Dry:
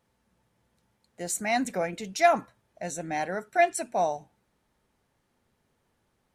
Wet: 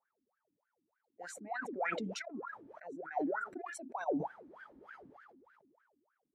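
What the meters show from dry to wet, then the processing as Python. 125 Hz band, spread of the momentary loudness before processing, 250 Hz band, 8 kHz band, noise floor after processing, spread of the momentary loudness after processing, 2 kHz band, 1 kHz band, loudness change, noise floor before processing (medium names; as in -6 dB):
-10.0 dB, 13 LU, -6.0 dB, -18.0 dB, under -85 dBFS, 18 LU, -10.0 dB, -13.0 dB, -12.5 dB, -74 dBFS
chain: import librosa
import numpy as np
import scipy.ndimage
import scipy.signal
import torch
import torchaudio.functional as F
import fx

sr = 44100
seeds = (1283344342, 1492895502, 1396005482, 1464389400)

y = fx.over_compress(x, sr, threshold_db=-27.0, ratio=-0.5)
y = fx.wah_lfo(y, sr, hz=3.3, low_hz=270.0, high_hz=1600.0, q=16.0)
y = fx.dereverb_blind(y, sr, rt60_s=1.9)
y = fx.sustainer(y, sr, db_per_s=25.0)
y = y * 10.0 ** (2.5 / 20.0)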